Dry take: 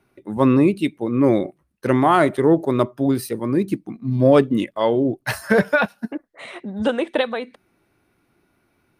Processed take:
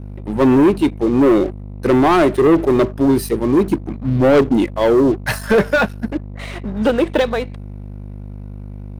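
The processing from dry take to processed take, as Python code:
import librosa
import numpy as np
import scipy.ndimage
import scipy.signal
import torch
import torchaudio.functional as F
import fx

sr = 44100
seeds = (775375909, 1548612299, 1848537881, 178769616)

y = fx.add_hum(x, sr, base_hz=50, snr_db=13)
y = fx.dynamic_eq(y, sr, hz=370.0, q=1.7, threshold_db=-30.0, ratio=4.0, max_db=7)
y = fx.leveller(y, sr, passes=3)
y = y * 10.0 ** (-7.0 / 20.0)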